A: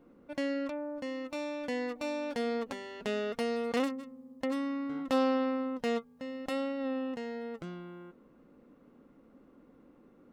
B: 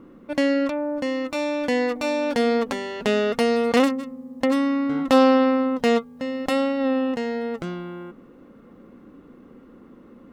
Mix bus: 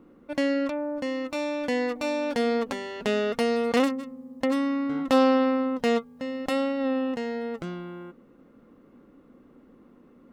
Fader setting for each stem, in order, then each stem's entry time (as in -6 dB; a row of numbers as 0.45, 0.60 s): +0.5, -9.0 dB; 0.00, 0.00 s